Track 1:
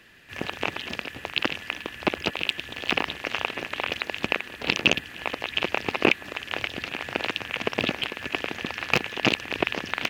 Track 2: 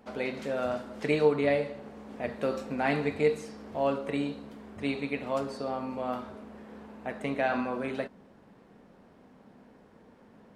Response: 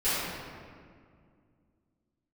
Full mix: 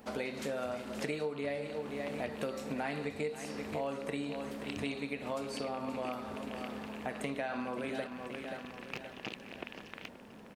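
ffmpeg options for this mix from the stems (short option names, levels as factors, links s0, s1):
-filter_complex "[0:a]volume=0.106,asplit=2[s0][s1];[s1]volume=0.158[s2];[1:a]highshelf=f=5900:g=12,volume=1.26,asplit=2[s3][s4];[s4]volume=0.211[s5];[s2][s5]amix=inputs=2:normalize=0,aecho=0:1:528|1056|1584|2112|2640|3168:1|0.45|0.202|0.0911|0.041|0.0185[s6];[s0][s3][s6]amix=inputs=3:normalize=0,acompressor=threshold=0.02:ratio=6"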